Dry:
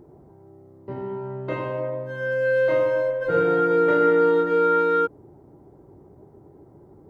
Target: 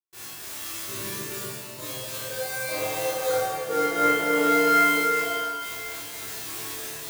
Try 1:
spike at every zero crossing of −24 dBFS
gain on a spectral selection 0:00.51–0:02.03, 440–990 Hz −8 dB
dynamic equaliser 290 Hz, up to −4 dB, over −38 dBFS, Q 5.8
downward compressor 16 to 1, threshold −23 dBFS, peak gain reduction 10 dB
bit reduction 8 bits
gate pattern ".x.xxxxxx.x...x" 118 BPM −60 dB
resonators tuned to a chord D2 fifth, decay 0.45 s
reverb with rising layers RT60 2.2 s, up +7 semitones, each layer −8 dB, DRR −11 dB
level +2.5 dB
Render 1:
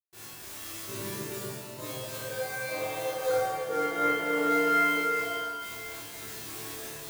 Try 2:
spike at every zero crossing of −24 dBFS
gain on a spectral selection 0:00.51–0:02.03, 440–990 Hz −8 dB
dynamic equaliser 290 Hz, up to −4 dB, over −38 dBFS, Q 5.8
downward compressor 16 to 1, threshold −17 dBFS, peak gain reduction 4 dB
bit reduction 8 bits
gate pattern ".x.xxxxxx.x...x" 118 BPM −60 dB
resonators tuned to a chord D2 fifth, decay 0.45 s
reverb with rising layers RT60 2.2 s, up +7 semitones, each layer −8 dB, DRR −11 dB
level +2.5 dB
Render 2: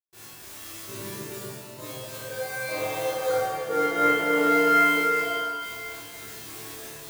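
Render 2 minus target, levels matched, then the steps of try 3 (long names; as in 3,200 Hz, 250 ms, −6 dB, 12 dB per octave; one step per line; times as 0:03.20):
spike at every zero crossing: distortion −6 dB
spike at every zero crossing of −18 dBFS
gain on a spectral selection 0:00.51–0:02.03, 440–990 Hz −8 dB
dynamic equaliser 290 Hz, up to −4 dB, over −38 dBFS, Q 5.8
downward compressor 16 to 1, threshold −17 dBFS, peak gain reduction 4 dB
bit reduction 8 bits
gate pattern ".x.xxxxxx.x...x" 118 BPM −60 dB
resonators tuned to a chord D2 fifth, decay 0.45 s
reverb with rising layers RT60 2.2 s, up +7 semitones, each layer −8 dB, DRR −11 dB
level +2.5 dB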